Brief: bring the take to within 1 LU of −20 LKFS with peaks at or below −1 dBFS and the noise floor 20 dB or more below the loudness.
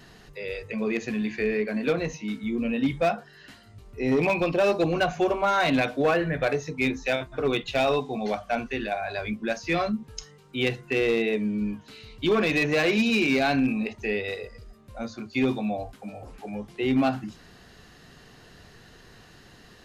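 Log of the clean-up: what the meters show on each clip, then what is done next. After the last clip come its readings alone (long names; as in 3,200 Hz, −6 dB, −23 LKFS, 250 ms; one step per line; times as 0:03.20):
share of clipped samples 1.0%; peaks flattened at −16.5 dBFS; integrated loudness −26.0 LKFS; sample peak −16.5 dBFS; target loudness −20.0 LKFS
→ clipped peaks rebuilt −16.5 dBFS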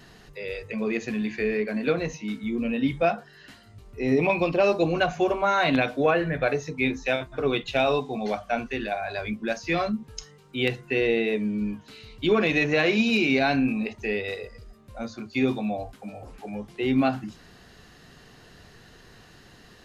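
share of clipped samples 0.0%; integrated loudness −25.5 LKFS; sample peak −7.5 dBFS; target loudness −20.0 LKFS
→ level +5.5 dB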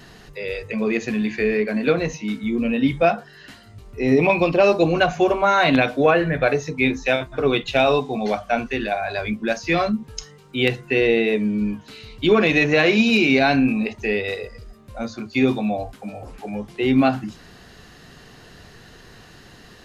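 integrated loudness −20.0 LKFS; sample peak −2.0 dBFS; background noise floor −47 dBFS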